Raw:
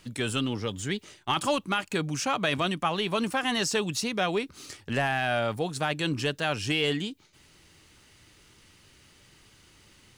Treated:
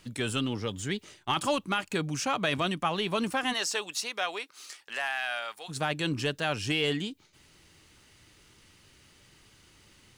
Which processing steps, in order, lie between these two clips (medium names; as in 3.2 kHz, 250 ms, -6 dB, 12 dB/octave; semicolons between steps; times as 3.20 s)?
3.52–5.68 s: high-pass 520 Hz -> 1.3 kHz 12 dB/octave; trim -1.5 dB